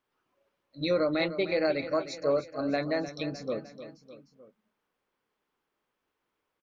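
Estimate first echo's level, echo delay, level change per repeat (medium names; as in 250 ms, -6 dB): -12.5 dB, 304 ms, -5.0 dB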